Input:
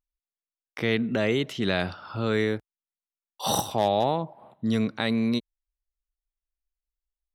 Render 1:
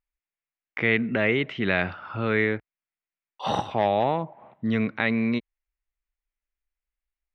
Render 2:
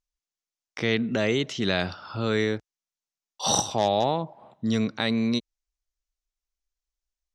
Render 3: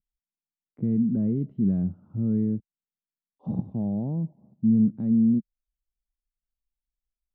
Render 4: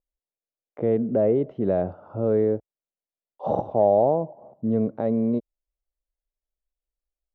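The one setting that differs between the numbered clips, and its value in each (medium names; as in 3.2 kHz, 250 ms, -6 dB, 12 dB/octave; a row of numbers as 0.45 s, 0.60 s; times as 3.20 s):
resonant low-pass, frequency: 2.2 kHz, 6.3 kHz, 200 Hz, 580 Hz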